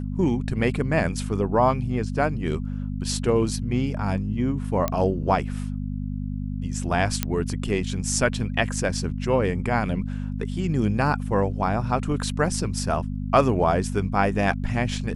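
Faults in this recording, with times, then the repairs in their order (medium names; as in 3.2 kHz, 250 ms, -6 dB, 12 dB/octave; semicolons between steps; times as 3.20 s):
hum 50 Hz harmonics 5 -29 dBFS
4.88 s: pop -10 dBFS
7.23 s: pop -6 dBFS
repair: de-click; de-hum 50 Hz, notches 5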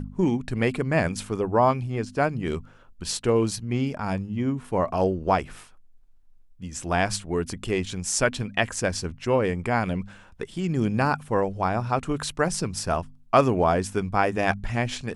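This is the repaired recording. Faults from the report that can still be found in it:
nothing left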